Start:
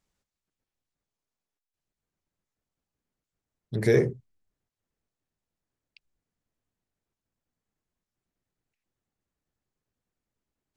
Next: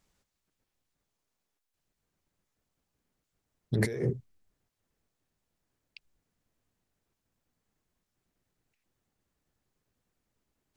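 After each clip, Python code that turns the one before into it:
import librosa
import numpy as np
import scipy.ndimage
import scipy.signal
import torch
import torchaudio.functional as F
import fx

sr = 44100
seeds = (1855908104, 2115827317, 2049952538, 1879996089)

y = fx.over_compress(x, sr, threshold_db=-30.0, ratio=-1.0)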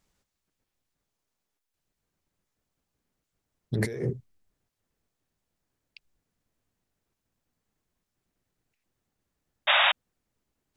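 y = fx.spec_paint(x, sr, seeds[0], shape='noise', start_s=9.67, length_s=0.25, low_hz=550.0, high_hz=3800.0, level_db=-21.0)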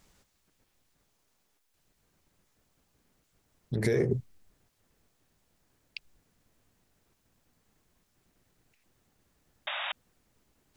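y = fx.over_compress(x, sr, threshold_db=-33.0, ratio=-1.0)
y = y * 10.0 ** (3.0 / 20.0)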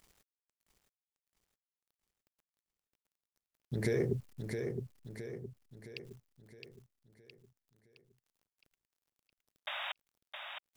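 y = fx.quant_dither(x, sr, seeds[1], bits=10, dither='none')
y = fx.echo_feedback(y, sr, ms=665, feedback_pct=48, wet_db=-6.0)
y = y * 10.0 ** (-5.0 / 20.0)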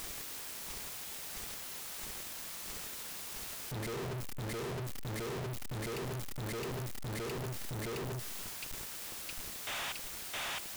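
y = np.sign(x) * np.sqrt(np.mean(np.square(x)))
y = y * 10.0 ** (6.0 / 20.0)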